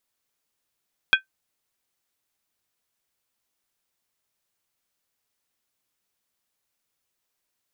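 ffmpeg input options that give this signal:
-f lavfi -i "aevalsrc='0.299*pow(10,-3*t/0.12)*sin(2*PI*1550*t)+0.251*pow(10,-3*t/0.095)*sin(2*PI*2470.7*t)+0.211*pow(10,-3*t/0.082)*sin(2*PI*3310.8*t)':d=0.63:s=44100"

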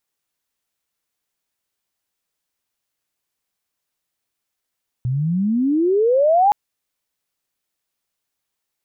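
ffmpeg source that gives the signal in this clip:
-f lavfi -i "aevalsrc='pow(10,(-18+7.5*t/1.47)/20)*sin(2*PI*120*1.47/log(850/120)*(exp(log(850/120)*t/1.47)-1))':d=1.47:s=44100"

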